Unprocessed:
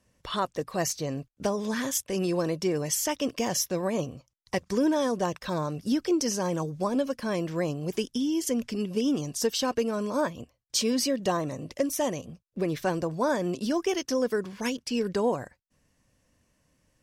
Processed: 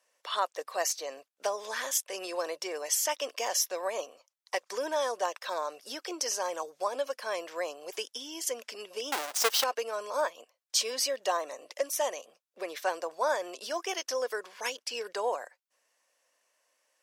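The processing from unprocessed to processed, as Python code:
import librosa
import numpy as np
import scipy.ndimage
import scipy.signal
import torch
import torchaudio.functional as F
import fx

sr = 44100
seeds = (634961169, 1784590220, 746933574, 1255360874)

y = fx.halfwave_hold(x, sr, at=(9.12, 9.64))
y = scipy.signal.sosfilt(scipy.signal.butter(4, 540.0, 'highpass', fs=sr, output='sos'), y)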